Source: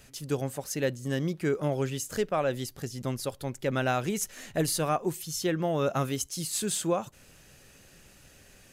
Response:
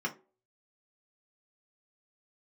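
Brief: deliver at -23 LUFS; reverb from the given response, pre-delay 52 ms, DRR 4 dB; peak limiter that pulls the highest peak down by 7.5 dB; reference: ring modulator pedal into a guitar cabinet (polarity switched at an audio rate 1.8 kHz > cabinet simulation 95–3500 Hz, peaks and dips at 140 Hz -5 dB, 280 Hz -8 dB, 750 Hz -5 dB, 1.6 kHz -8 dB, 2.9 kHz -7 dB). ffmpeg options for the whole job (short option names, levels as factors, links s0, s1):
-filter_complex "[0:a]alimiter=limit=0.0708:level=0:latency=1,asplit=2[s0][s1];[1:a]atrim=start_sample=2205,adelay=52[s2];[s1][s2]afir=irnorm=-1:irlink=0,volume=0.335[s3];[s0][s3]amix=inputs=2:normalize=0,aeval=exprs='val(0)*sgn(sin(2*PI*1800*n/s))':c=same,highpass=95,equalizer=f=140:t=q:w=4:g=-5,equalizer=f=280:t=q:w=4:g=-8,equalizer=f=750:t=q:w=4:g=-5,equalizer=f=1600:t=q:w=4:g=-8,equalizer=f=2900:t=q:w=4:g=-7,lowpass=f=3500:w=0.5412,lowpass=f=3500:w=1.3066,volume=3.98"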